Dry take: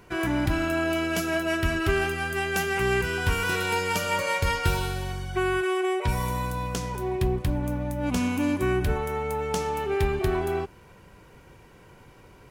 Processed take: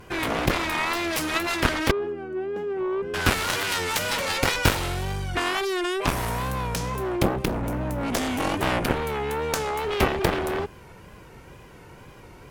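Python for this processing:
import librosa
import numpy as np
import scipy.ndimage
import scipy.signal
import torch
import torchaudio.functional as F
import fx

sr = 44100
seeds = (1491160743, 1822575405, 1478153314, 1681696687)

y = fx.wow_flutter(x, sr, seeds[0], rate_hz=2.1, depth_cents=93.0)
y = fx.bandpass_q(y, sr, hz=350.0, q=2.4, at=(1.91, 3.14))
y = fx.cheby_harmonics(y, sr, harmonics=(7,), levels_db=(-10,), full_scale_db=-9.5)
y = F.gain(torch.from_numpy(y), 3.5).numpy()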